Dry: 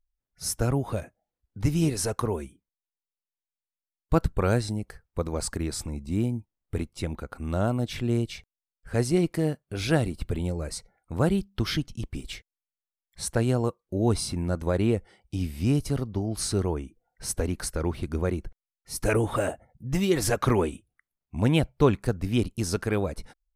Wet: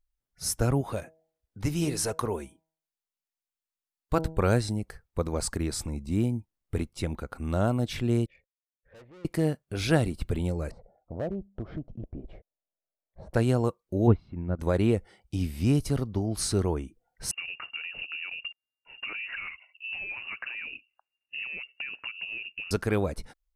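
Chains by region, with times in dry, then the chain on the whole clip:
0:00.81–0:04.38: low-shelf EQ 270 Hz −6 dB + hum removal 160.5 Hz, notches 6
0:08.26–0:09.25: formant resonators in series e + tube saturation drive 49 dB, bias 0.3
0:10.71–0:13.34: low-pass with resonance 630 Hz, resonance Q 4.5 + downward compressor 2 to 1, threshold −38 dBFS + gain into a clipping stage and back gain 26 dB
0:14.07–0:14.59: low-pass filter 2,800 Hz 24 dB per octave + low-shelf EQ 440 Hz +7 dB + expander for the loud parts 2.5 to 1, over −27 dBFS
0:17.31–0:22.71: downward compressor 10 to 1, threshold −33 dBFS + voice inversion scrambler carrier 2,800 Hz
whole clip: no processing

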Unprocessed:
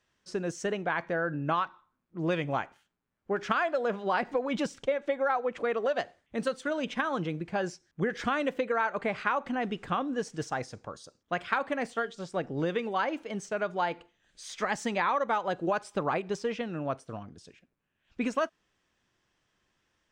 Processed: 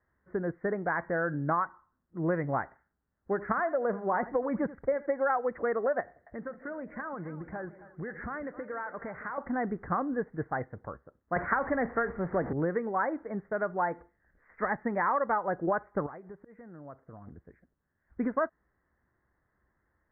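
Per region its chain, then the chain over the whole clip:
0:02.63–0:05.13: dynamic equaliser 1,500 Hz, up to −4 dB, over −39 dBFS, Q 2.2 + single-tap delay 82 ms −16.5 dB
0:06.00–0:09.38: downward compressor 2.5 to 1, threshold −39 dBFS + high-shelf EQ 3,400 Hz +10 dB + echo with a time of its own for lows and highs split 570 Hz, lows 160 ms, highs 265 ms, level −14.5 dB
0:11.36–0:12.53: converter with a step at zero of −35.5 dBFS + multiband upward and downward compressor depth 70%
0:16.06–0:17.27: volume swells 409 ms + downward compressor 2.5 to 1, threshold −49 dBFS
whole clip: Butterworth low-pass 2,000 Hz 96 dB per octave; parametric band 62 Hz +12 dB 0.79 octaves

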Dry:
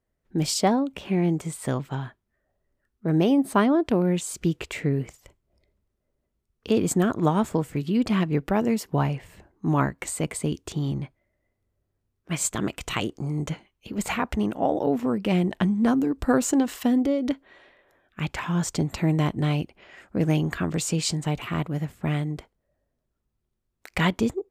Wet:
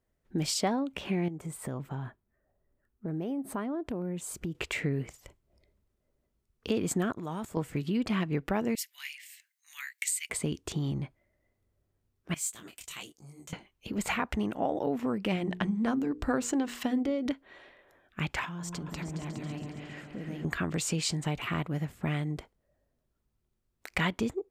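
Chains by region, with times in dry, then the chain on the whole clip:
0:01.28–0:04.55: parametric band 4,500 Hz −9.5 dB 2.3 octaves + downward compressor 2.5 to 1, threshold −34 dBFS
0:07.12–0:07.57: high-shelf EQ 6,700 Hz +10.5 dB + output level in coarse steps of 17 dB
0:08.75–0:10.30: Chebyshev high-pass filter 2,000 Hz, order 4 + high-shelf EQ 6,800 Hz +11 dB
0:12.34–0:13.53: first-order pre-emphasis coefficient 0.9 + double-tracking delay 13 ms −13 dB + micro pitch shift up and down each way 38 cents
0:15.34–0:17.26: parametric band 12,000 Hz −7 dB 0.67 octaves + mains-hum notches 60/120/180/240/300/360/420/480 Hz
0:18.45–0:20.45: downward compressor, threshold −37 dBFS + echo whose low-pass opens from repeat to repeat 138 ms, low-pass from 750 Hz, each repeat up 2 octaves, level −3 dB
whole clip: dynamic equaliser 2,000 Hz, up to +4 dB, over −41 dBFS, Q 0.71; downward compressor 2 to 1, threshold −32 dBFS

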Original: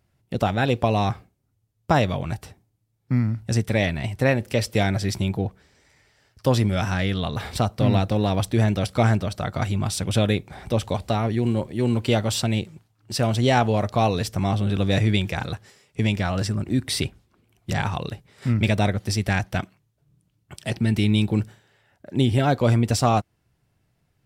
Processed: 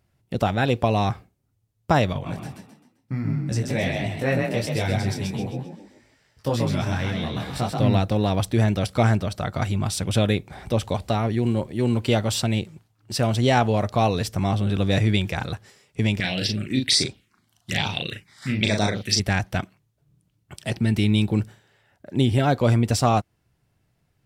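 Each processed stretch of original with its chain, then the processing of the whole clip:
0:02.13–0:07.80: echo with shifted repeats 131 ms, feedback 39%, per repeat +32 Hz, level −3.5 dB + micro pitch shift up and down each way 18 cents
0:16.20–0:19.20: meter weighting curve D + phaser swept by the level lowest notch 370 Hz, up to 2,900 Hz, full sweep at −16 dBFS + double-tracking delay 38 ms −4 dB
whole clip: no processing

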